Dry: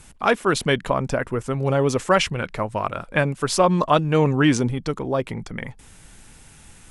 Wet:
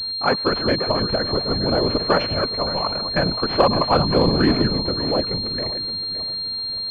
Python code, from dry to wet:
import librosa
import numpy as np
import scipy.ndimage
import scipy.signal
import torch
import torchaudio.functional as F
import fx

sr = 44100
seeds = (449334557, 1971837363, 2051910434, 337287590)

y = fx.reverse_delay_fb(x, sr, ms=284, feedback_pct=55, wet_db=-9)
y = fx.whisperise(y, sr, seeds[0])
y = fx.pwm(y, sr, carrier_hz=4200.0)